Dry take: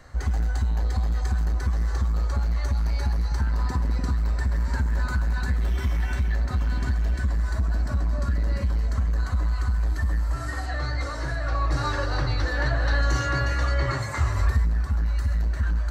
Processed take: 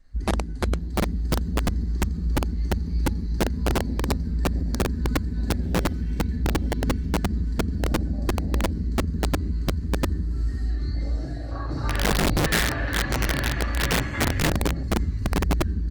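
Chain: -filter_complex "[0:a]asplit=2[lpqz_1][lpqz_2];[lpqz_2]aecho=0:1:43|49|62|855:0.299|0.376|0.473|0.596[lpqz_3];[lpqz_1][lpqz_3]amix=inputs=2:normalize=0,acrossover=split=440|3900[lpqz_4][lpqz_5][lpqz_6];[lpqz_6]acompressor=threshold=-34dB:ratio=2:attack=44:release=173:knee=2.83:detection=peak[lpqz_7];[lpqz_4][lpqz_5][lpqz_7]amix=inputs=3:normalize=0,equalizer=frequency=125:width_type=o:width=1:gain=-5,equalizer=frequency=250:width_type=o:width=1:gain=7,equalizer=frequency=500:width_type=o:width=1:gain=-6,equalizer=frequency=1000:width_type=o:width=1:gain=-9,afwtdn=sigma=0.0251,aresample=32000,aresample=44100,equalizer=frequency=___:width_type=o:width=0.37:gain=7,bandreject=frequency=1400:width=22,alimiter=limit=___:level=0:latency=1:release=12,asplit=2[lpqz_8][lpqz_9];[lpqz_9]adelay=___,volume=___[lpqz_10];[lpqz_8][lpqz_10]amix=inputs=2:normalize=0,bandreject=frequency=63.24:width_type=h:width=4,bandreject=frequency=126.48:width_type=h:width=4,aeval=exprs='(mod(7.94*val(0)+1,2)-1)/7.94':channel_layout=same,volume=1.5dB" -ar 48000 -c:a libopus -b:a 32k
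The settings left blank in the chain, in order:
4700, -14dB, 38, -10.5dB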